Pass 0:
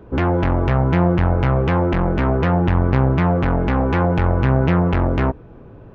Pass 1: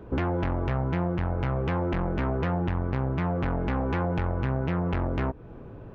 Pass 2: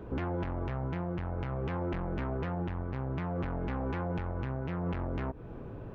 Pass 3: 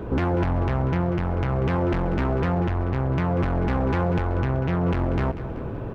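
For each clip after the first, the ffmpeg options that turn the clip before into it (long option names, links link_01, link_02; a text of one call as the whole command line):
ffmpeg -i in.wav -af "acompressor=threshold=-23dB:ratio=4,volume=-2dB" out.wav
ffmpeg -i in.wav -af "alimiter=level_in=2dB:limit=-24dB:level=0:latency=1:release=90,volume=-2dB" out.wav
ffmpeg -i in.wav -filter_complex "[0:a]asplit=2[link_01][link_02];[link_02]volume=31.5dB,asoftclip=hard,volume=-31.5dB,volume=-4.5dB[link_03];[link_01][link_03]amix=inputs=2:normalize=0,aecho=1:1:191|382|573|764|955:0.224|0.119|0.0629|0.0333|0.0177,volume=7.5dB" out.wav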